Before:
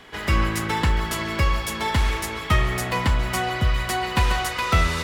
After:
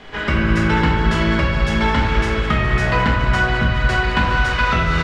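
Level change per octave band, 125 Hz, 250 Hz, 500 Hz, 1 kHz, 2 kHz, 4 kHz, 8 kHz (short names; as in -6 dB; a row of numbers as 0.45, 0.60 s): +5.5, +9.0, +7.0, +4.5, +8.0, +2.5, -7.0 dB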